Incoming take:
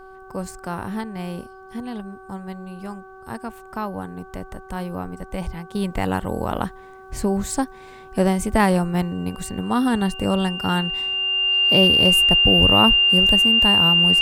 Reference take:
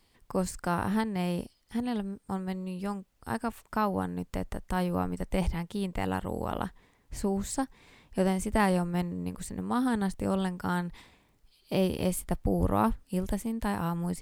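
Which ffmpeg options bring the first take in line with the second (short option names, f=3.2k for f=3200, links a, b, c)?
-af "bandreject=f=380.1:t=h:w=4,bandreject=f=760.2:t=h:w=4,bandreject=f=1.1403k:t=h:w=4,bandreject=f=1.5204k:t=h:w=4,bandreject=f=2.8k:w=30,agate=range=-21dB:threshold=-35dB,asetnsamples=n=441:p=0,asendcmd='5.75 volume volume -8dB',volume=0dB"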